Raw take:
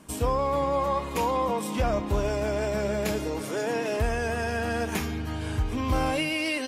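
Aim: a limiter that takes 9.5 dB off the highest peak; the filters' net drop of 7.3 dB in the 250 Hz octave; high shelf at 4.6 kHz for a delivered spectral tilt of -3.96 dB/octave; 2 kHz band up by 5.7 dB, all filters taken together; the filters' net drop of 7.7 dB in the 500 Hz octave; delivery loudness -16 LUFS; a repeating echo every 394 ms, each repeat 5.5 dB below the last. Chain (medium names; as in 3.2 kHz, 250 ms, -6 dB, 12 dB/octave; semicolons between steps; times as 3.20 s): peaking EQ 250 Hz -7 dB; peaking EQ 500 Hz -8.5 dB; peaking EQ 2 kHz +6 dB; treble shelf 4.6 kHz +9 dB; peak limiter -22 dBFS; feedback delay 394 ms, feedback 53%, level -5.5 dB; trim +14 dB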